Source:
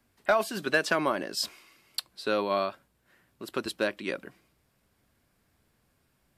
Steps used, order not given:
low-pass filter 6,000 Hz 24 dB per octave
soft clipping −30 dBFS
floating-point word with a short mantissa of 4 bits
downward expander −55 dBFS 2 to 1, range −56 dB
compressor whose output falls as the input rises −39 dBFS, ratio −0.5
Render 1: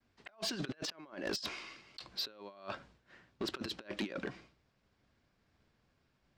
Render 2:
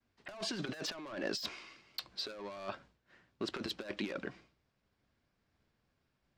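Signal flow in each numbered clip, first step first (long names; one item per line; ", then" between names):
floating-point word with a short mantissa, then low-pass filter, then downward expander, then compressor whose output falls as the input rises, then soft clipping
floating-point word with a short mantissa, then low-pass filter, then soft clipping, then downward expander, then compressor whose output falls as the input rises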